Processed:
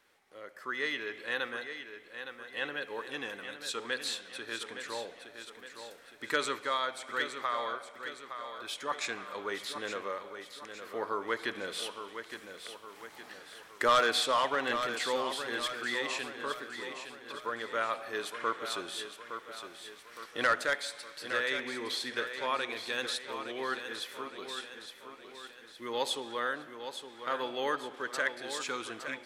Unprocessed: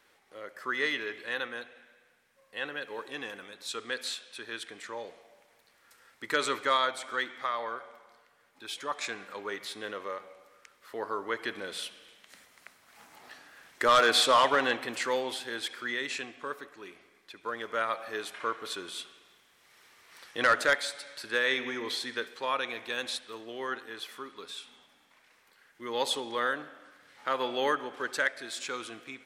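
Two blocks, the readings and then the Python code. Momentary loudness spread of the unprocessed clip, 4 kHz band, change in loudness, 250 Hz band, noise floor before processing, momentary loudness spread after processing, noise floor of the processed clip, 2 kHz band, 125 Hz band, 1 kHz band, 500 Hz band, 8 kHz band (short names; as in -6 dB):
17 LU, -2.5 dB, -3.5 dB, -2.0 dB, -65 dBFS, 15 LU, -54 dBFS, -2.5 dB, -2.0 dB, -3.0 dB, -2.5 dB, -2.0 dB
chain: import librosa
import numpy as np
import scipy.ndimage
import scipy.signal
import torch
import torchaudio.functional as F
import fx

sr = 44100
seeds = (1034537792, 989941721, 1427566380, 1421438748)

y = fx.rider(x, sr, range_db=3, speed_s=0.5)
y = fx.echo_feedback(y, sr, ms=864, feedback_pct=49, wet_db=-9.0)
y = y * 10.0 ** (-3.0 / 20.0)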